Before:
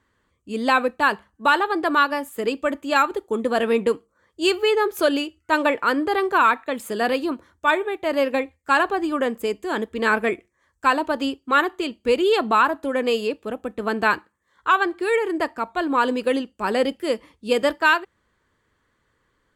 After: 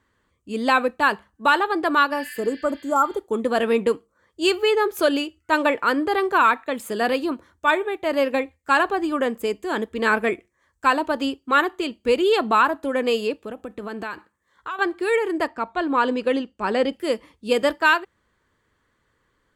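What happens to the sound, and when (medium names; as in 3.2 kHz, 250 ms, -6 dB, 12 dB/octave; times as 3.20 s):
2.17–3.15 s: spectral replace 1.5–5.5 kHz
13.45–14.79 s: compression 4:1, threshold -29 dBFS
15.47–16.93 s: distance through air 64 m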